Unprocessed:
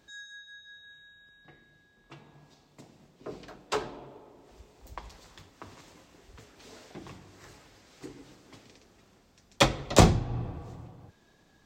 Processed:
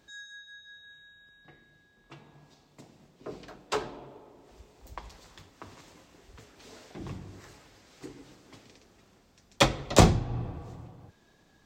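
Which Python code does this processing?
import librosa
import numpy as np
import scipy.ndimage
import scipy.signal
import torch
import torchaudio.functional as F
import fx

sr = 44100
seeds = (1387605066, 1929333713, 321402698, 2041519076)

y = fx.low_shelf(x, sr, hz=360.0, db=11.0, at=(6.99, 7.41))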